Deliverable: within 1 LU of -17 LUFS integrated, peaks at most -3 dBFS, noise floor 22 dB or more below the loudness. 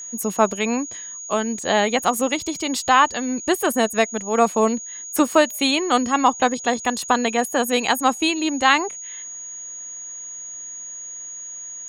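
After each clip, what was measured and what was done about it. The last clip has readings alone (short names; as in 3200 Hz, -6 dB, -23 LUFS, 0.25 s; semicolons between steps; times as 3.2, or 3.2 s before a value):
steady tone 6700 Hz; tone level -32 dBFS; loudness -20.5 LUFS; peak -2.5 dBFS; loudness target -17.0 LUFS
-> notch 6700 Hz, Q 30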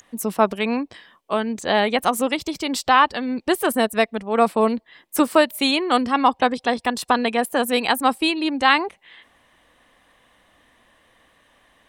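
steady tone none; loudness -20.5 LUFS; peak -2.5 dBFS; loudness target -17.0 LUFS
-> gain +3.5 dB; limiter -3 dBFS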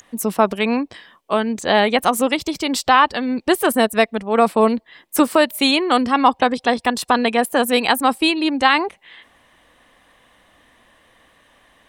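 loudness -17.5 LUFS; peak -3.0 dBFS; noise floor -58 dBFS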